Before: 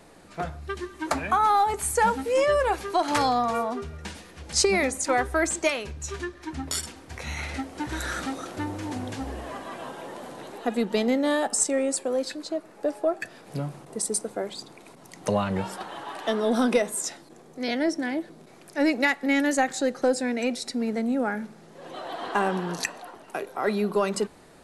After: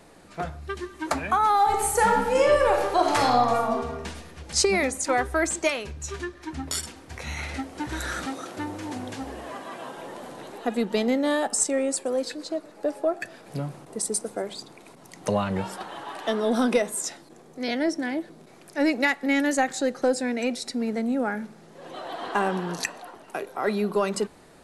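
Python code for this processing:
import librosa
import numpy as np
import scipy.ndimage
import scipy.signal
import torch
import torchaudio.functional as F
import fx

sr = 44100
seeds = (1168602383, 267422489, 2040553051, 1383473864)

y = fx.reverb_throw(x, sr, start_s=1.55, length_s=2.5, rt60_s=1.1, drr_db=1.0)
y = fx.highpass(y, sr, hz=150.0, slope=6, at=(8.26, 9.96))
y = fx.echo_warbled(y, sr, ms=120, feedback_pct=59, rate_hz=2.8, cents=152, wet_db=-23.5, at=(11.93, 14.6))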